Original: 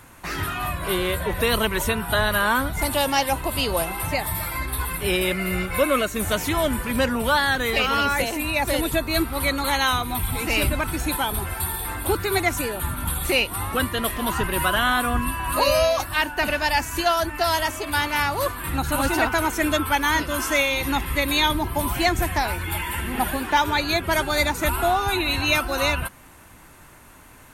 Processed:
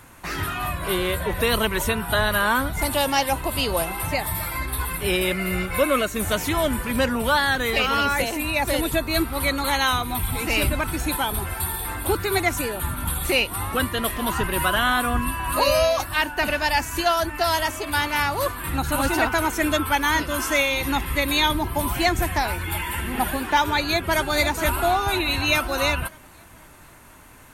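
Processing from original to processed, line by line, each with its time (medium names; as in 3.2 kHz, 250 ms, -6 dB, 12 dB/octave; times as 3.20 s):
23.83–24.30 s: echo throw 490 ms, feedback 50%, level -9.5 dB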